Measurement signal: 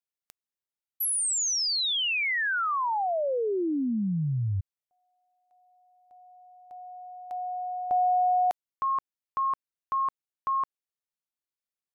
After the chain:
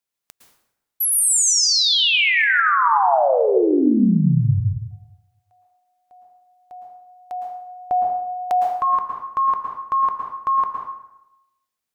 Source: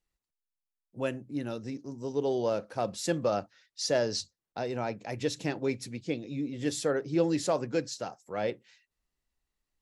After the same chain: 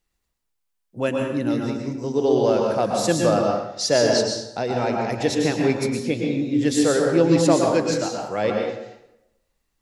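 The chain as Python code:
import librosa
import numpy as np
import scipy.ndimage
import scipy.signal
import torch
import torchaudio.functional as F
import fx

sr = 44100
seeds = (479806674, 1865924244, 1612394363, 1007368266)

y = fx.rev_plate(x, sr, seeds[0], rt60_s=0.89, hf_ratio=0.7, predelay_ms=100, drr_db=0.5)
y = y * librosa.db_to_amplitude(8.0)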